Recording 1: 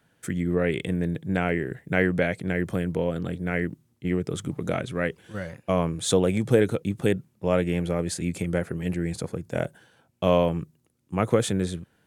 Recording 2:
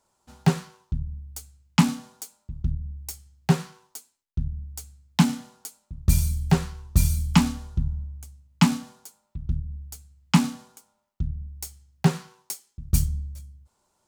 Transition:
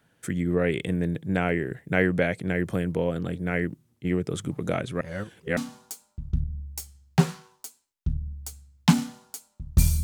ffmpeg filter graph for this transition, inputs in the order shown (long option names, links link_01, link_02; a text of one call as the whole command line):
ffmpeg -i cue0.wav -i cue1.wav -filter_complex "[0:a]apad=whole_dur=10.03,atrim=end=10.03,asplit=2[link_01][link_02];[link_01]atrim=end=5.012[link_03];[link_02]atrim=start=5.008:end=5.572,asetpts=PTS-STARTPTS,areverse[link_04];[1:a]atrim=start=1.878:end=6.34[link_05];[link_03][link_04]acrossfade=duration=0.004:curve1=hsin:curve2=hsin[link_06];[link_06][link_05]acrossfade=duration=0.004:curve1=hsin:curve2=hsin" out.wav